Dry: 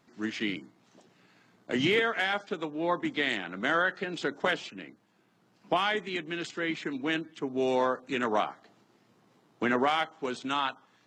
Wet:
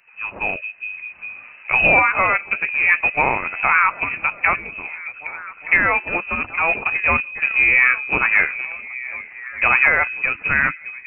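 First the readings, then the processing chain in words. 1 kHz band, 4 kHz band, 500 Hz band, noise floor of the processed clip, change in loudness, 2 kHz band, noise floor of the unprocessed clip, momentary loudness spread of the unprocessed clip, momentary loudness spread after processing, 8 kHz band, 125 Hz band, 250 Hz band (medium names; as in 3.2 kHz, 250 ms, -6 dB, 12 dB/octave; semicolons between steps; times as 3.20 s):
+10.0 dB, no reading, +2.0 dB, -42 dBFS, +13.0 dB, +16.5 dB, -67 dBFS, 9 LU, 16 LU, under -30 dB, +7.5 dB, -2.5 dB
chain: repeats whose band climbs or falls 408 ms, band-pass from 260 Hz, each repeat 0.7 oct, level -8 dB; in parallel at -12 dB: bit crusher 5-bit; on the sum: frequency inversion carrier 2.8 kHz; level rider gain up to 11 dB; tape noise reduction on one side only encoder only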